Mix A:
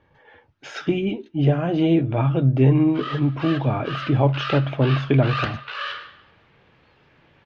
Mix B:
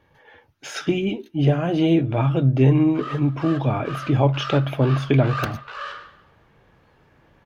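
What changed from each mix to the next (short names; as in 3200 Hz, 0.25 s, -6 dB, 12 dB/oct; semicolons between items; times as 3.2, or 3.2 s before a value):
background: remove weighting filter D; master: remove air absorption 140 m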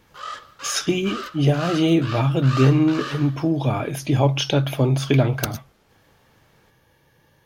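background: entry -2.80 s; master: add tone controls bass 0 dB, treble +15 dB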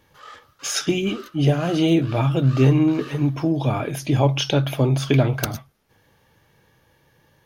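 background -10.0 dB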